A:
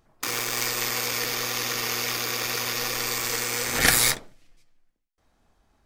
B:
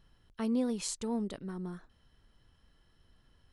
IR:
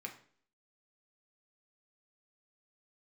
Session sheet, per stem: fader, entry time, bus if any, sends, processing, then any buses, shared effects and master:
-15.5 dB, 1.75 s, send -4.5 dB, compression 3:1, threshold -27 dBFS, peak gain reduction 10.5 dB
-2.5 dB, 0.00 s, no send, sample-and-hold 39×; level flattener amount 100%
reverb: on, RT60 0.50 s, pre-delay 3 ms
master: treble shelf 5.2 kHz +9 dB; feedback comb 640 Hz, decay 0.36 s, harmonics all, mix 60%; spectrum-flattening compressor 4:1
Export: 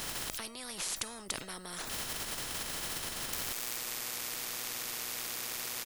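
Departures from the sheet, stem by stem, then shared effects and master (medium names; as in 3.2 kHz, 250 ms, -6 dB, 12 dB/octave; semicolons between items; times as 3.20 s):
stem A: entry 1.75 s -> 3.10 s; stem B: missing sample-and-hold 39×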